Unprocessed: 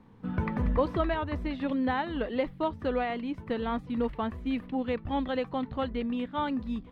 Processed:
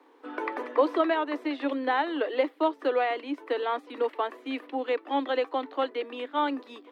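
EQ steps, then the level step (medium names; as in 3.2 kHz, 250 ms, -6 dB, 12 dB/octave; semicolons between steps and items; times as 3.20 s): steep high-pass 280 Hz 96 dB/octave; +4.5 dB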